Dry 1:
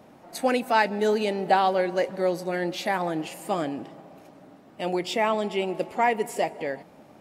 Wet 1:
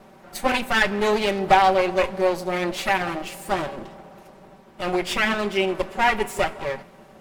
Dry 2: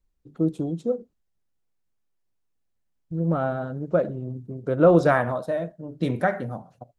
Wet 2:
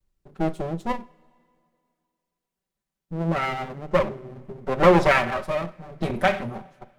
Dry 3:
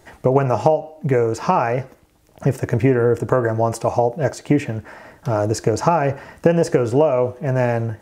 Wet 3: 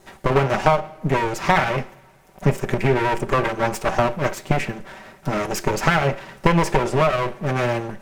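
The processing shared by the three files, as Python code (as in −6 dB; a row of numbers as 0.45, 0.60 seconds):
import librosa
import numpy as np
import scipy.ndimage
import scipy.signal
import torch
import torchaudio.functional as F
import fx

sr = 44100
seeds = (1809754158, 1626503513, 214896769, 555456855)

y = fx.lower_of_two(x, sr, delay_ms=5.2)
y = fx.dynamic_eq(y, sr, hz=2400.0, q=1.5, threshold_db=-41.0, ratio=4.0, max_db=6)
y = fx.rev_double_slope(y, sr, seeds[0], early_s=0.37, late_s=2.4, knee_db=-18, drr_db=15.0)
y = librosa.util.normalize(y) * 10.0 ** (-2 / 20.0)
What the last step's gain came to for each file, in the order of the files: +4.0, +2.0, +1.0 decibels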